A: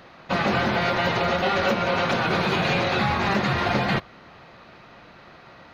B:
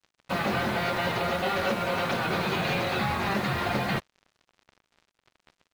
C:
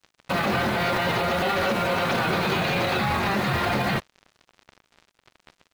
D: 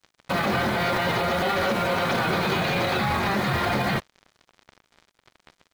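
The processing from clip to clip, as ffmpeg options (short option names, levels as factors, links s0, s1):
-af "acrusher=bits=5:mix=0:aa=0.5,volume=0.562"
-af "alimiter=limit=0.0668:level=0:latency=1:release=26,volume=2.51"
-af "bandreject=f=2700:w=15"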